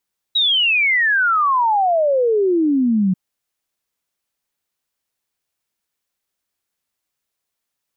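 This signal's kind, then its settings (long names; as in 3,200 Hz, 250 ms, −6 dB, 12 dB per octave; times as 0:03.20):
exponential sine sweep 3,900 Hz → 180 Hz 2.79 s −13 dBFS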